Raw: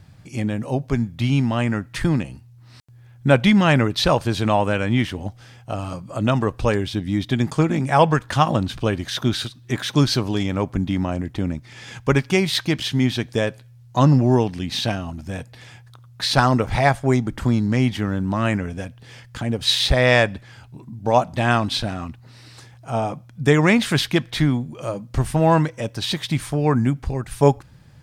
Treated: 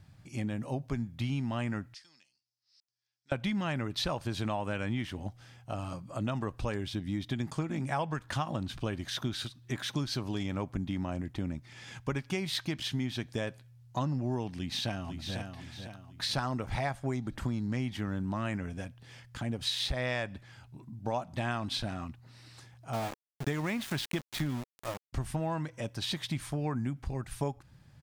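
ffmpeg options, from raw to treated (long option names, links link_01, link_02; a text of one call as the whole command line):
ffmpeg -i in.wav -filter_complex "[0:a]asettb=1/sr,asplit=3[link_01][link_02][link_03];[link_01]atrim=end=1.944[link_04];[link_02]atrim=start=1.94:end=3.32,asetpts=PTS-STARTPTS,afade=type=in:duration=0.004:curve=qsin,afade=type=out:start_time=1.376:duration=0.004:curve=qsin,bandpass=frequency=5100:width_type=q:width=5.4[link_05];[link_03]atrim=start=3.316[link_06];[link_04][link_05]acrossfade=duration=0.004:curve1=hsin:curve2=qsin[link_07];[link_07][link_06]acrossfade=duration=0.004:curve1=qsin:curve2=hsin,asplit=2[link_08][link_09];[link_09]afade=type=in:start_time=14.54:duration=0.01,afade=type=out:start_time=15.37:duration=0.01,aecho=0:1:500|1000|1500|2000|2500:0.421697|0.168679|0.0674714|0.0269886|0.0107954[link_10];[link_08][link_10]amix=inputs=2:normalize=0,asettb=1/sr,asplit=3[link_11][link_12][link_13];[link_11]atrim=end=22.934[link_14];[link_12]atrim=start=22.93:end=25.13,asetpts=PTS-STARTPTS,afade=type=in:duration=0.004:curve=qsin,afade=type=out:start_time=2.196:duration=0.004:curve=qsin,aeval=exprs='val(0)*gte(abs(val(0)),0.0562)':channel_layout=same[link_15];[link_13]atrim=start=25.126[link_16];[link_14][link_15]acrossfade=duration=0.004:curve1=hsin:curve2=qsin[link_17];[link_17][link_16]acrossfade=duration=0.004:curve1=qsin:curve2=hsin,equalizer=frequency=460:width_type=o:width=0.38:gain=-4,acompressor=threshold=-20dB:ratio=6,volume=-9dB" out.wav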